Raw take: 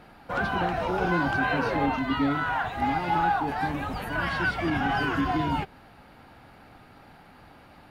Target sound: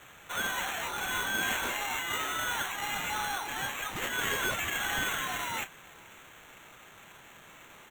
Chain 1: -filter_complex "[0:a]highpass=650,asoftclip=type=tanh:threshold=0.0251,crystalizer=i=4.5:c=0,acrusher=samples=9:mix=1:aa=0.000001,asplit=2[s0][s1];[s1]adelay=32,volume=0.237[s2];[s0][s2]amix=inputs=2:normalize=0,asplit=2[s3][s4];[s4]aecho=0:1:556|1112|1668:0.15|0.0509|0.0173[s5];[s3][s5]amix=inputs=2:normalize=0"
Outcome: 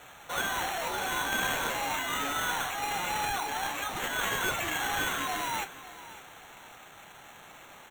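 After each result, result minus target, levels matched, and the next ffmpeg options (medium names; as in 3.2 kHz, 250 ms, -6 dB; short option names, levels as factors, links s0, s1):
echo-to-direct +9.5 dB; 1 kHz band +2.5 dB
-filter_complex "[0:a]highpass=650,asoftclip=type=tanh:threshold=0.0251,crystalizer=i=4.5:c=0,acrusher=samples=9:mix=1:aa=0.000001,asplit=2[s0][s1];[s1]adelay=32,volume=0.237[s2];[s0][s2]amix=inputs=2:normalize=0,asplit=2[s3][s4];[s4]aecho=0:1:556|1112:0.0501|0.017[s5];[s3][s5]amix=inputs=2:normalize=0"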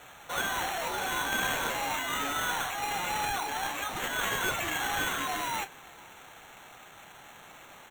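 1 kHz band +2.5 dB
-filter_complex "[0:a]highpass=1400,asoftclip=type=tanh:threshold=0.0251,crystalizer=i=4.5:c=0,acrusher=samples=9:mix=1:aa=0.000001,asplit=2[s0][s1];[s1]adelay=32,volume=0.237[s2];[s0][s2]amix=inputs=2:normalize=0,asplit=2[s3][s4];[s4]aecho=0:1:556|1112:0.0501|0.017[s5];[s3][s5]amix=inputs=2:normalize=0"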